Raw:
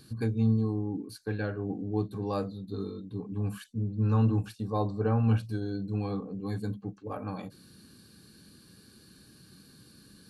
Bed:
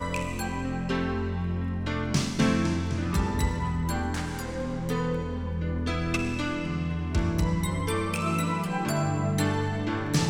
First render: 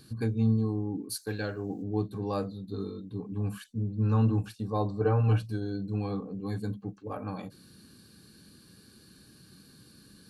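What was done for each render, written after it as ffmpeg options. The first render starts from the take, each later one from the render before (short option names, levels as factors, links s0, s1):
-filter_complex "[0:a]asplit=3[s0][s1][s2];[s0]afade=t=out:st=1.09:d=0.02[s3];[s1]bass=f=250:g=-3,treble=f=4000:g=15,afade=t=in:st=1.09:d=0.02,afade=t=out:st=1.82:d=0.02[s4];[s2]afade=t=in:st=1.82:d=0.02[s5];[s3][s4][s5]amix=inputs=3:normalize=0,asettb=1/sr,asplit=3[s6][s7][s8];[s6]atrim=end=5.004[s9];[s7]atrim=start=5:end=5.43,asetpts=PTS-STARTPTS,afade=t=in:d=0.004:c=qsin,afade=t=out:st=0.426:d=0.004:c=qsin,aecho=1:1:6.6:0.65,atrim=end_sample=18963[s10];[s8]atrim=start=5.426[s11];[s9][s10]acrossfade=d=0.004:c1=hsin:c2=qsin[s12];[s12][s11]acrossfade=d=0.004:c1=qsin:c2=hsin"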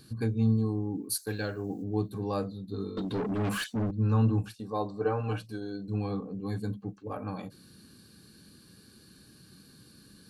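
-filter_complex "[0:a]asettb=1/sr,asplit=3[s0][s1][s2];[s0]atrim=end=0.424[s3];[s1]atrim=start=0.42:end=2.27,asetpts=PTS-STARTPTS,afade=t=in:d=0.004:c=qsin,afade=t=out:st=1.846:d=0.004:c=qsin,highshelf=f=8800:g=9.5[s4];[s2]atrim=start=2.266[s5];[s3][s4]acrossfade=d=0.004:c1=hsin:c2=qsin[s6];[s6][s5]acrossfade=d=0.004:c1=qsin:c2=hsin,asettb=1/sr,asplit=3[s7][s8][s9];[s7]atrim=end=2.974[s10];[s8]atrim=start=2.97:end=3.91,asetpts=PTS-STARTPTS,afade=t=in:d=0.004:c=qsin,afade=t=out:st=0.936:d=0.004:c=qsin,asplit=2[s11][s12];[s12]highpass=f=720:p=1,volume=28.2,asoftclip=type=tanh:threshold=0.075[s13];[s11][s13]amix=inputs=2:normalize=0,lowpass=f=4100:p=1,volume=0.501[s14];[s9]atrim=start=3.906[s15];[s10][s14]acrossfade=d=0.004:c1=hsin:c2=qsin[s16];[s16][s15]acrossfade=d=0.004:c1=qsin:c2=hsin,asettb=1/sr,asplit=3[s17][s18][s19];[s17]atrim=end=4.604[s20];[s18]atrim=start=4.6:end=5.88,asetpts=PTS-STARTPTS,afade=t=in:d=0.004:c=qsin,afade=t=out:st=1.276:d=0.004:c=qsin,equalizer=f=63:w=0.55:g=-15[s21];[s19]atrim=start=5.876[s22];[s20][s21]acrossfade=d=0.004:c1=hsin:c2=qsin[s23];[s23][s22]acrossfade=d=0.004:c1=qsin:c2=hsin"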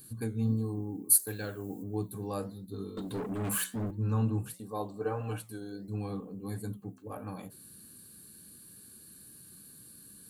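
-af "aexciter=amount=4.2:drive=8.5:freq=7400,flanger=delay=6.9:depth=6.7:regen=-84:speed=1.5:shape=sinusoidal"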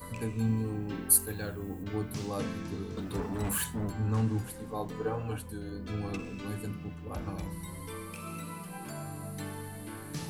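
-filter_complex "[1:a]volume=0.2[s0];[0:a][s0]amix=inputs=2:normalize=0"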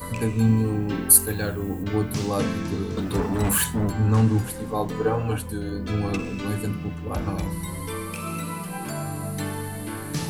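-af "volume=3.16,alimiter=limit=0.891:level=0:latency=1"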